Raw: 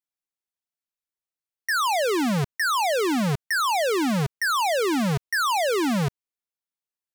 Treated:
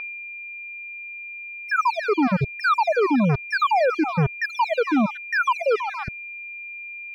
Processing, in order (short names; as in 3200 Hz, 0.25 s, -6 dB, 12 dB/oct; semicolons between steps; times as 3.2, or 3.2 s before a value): random spectral dropouts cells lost 50%; low shelf 310 Hz +9.5 dB; whine 2400 Hz -25 dBFS; EQ curve 140 Hz 0 dB, 1300 Hz +9 dB, 2500 Hz -3 dB, 5000 Hz -1 dB, 7300 Hz -19 dB; reverb removal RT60 0.91 s; gain -2.5 dB